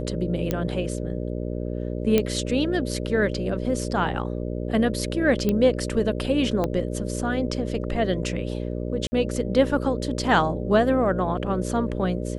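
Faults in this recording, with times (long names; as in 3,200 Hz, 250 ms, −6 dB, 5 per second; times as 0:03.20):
mains buzz 60 Hz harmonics 10 −29 dBFS
0:00.51: click −11 dBFS
0:02.18: click −7 dBFS
0:05.49: click −11 dBFS
0:06.64: click −13 dBFS
0:09.07–0:09.12: drop-out 50 ms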